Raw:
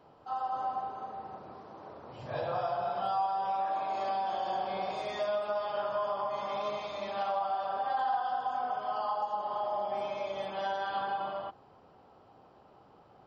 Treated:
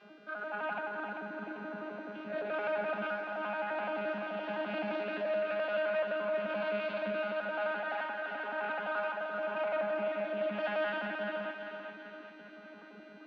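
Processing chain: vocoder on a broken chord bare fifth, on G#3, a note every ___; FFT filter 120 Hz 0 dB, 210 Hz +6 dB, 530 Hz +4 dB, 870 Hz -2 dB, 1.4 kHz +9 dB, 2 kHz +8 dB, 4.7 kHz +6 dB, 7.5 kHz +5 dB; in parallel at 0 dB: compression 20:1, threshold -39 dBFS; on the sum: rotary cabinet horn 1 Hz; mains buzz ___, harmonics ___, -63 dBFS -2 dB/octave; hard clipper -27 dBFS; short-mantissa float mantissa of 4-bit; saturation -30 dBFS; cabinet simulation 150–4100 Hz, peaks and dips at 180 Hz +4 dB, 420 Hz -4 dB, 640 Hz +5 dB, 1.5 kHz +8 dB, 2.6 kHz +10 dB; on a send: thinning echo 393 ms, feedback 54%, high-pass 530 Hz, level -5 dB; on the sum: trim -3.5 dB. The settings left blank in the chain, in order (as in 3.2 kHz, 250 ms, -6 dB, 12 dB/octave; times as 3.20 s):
86 ms, 400 Hz, 39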